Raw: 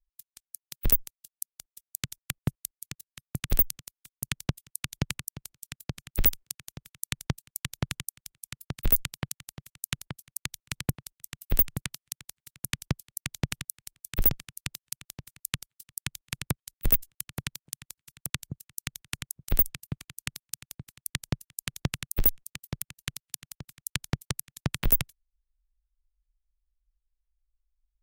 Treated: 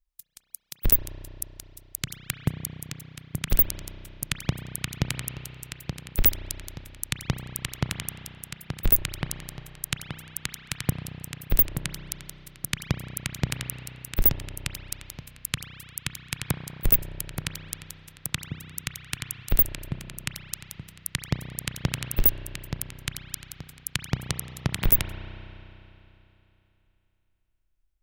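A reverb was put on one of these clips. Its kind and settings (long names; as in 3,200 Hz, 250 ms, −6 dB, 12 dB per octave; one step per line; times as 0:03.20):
spring reverb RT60 3.1 s, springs 32 ms, chirp 40 ms, DRR 7 dB
level +2.5 dB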